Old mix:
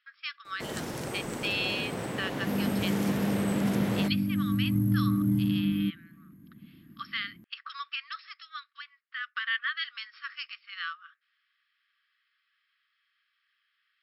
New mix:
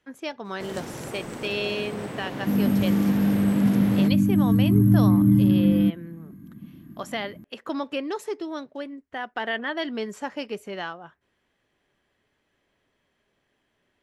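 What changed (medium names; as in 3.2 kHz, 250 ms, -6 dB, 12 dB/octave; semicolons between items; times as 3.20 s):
speech: remove brick-wall FIR band-pass 1.1–5.5 kHz; second sound +8.5 dB; master: add treble shelf 6.5 kHz -5 dB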